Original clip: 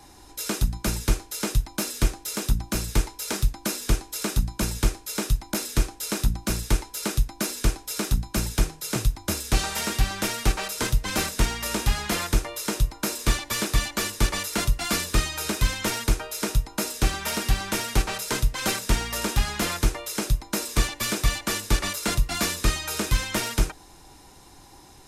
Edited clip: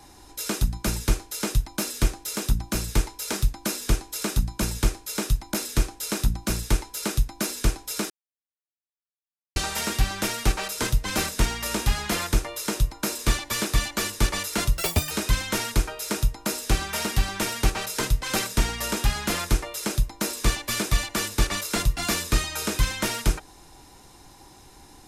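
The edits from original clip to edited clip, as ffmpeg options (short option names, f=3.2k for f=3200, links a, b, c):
-filter_complex "[0:a]asplit=5[a][b][c][d][e];[a]atrim=end=8.1,asetpts=PTS-STARTPTS,afade=t=out:st=8.096:d=0.004:c=hsin[f];[b]atrim=start=8.1:end=9.56,asetpts=PTS-STARTPTS,volume=0[g];[c]atrim=start=9.56:end=14.774,asetpts=PTS-STARTPTS,afade=t=in:d=0.004:c=hsin[h];[d]atrim=start=14.77:end=15.43,asetpts=PTS-STARTPTS,asetrate=85995,aresample=44100,atrim=end_sample=14926,asetpts=PTS-STARTPTS[i];[e]atrim=start=15.426[j];[f][g][h]concat=n=3:v=0:a=1[k];[k][i]acrossfade=d=0.004:c1=hsin:c2=hsin[l];[l][j]acrossfade=d=0.004:c1=hsin:c2=hsin"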